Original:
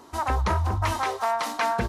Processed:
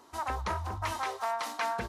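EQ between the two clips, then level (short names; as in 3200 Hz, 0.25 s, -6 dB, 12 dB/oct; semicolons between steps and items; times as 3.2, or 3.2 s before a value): low shelf 380 Hz -7 dB; -6.0 dB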